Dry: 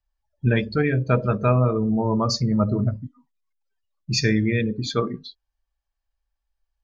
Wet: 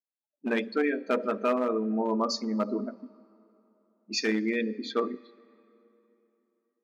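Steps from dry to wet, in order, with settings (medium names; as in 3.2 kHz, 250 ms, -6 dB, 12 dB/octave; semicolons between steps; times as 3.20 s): level-controlled noise filter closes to 340 Hz, open at -20 dBFS; treble shelf 5 kHz -6.5 dB; overload inside the chain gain 13 dB; brick-wall FIR high-pass 210 Hz; on a send: reverberation RT60 3.4 s, pre-delay 35 ms, DRR 23 dB; on the sum: trim -3.5 dB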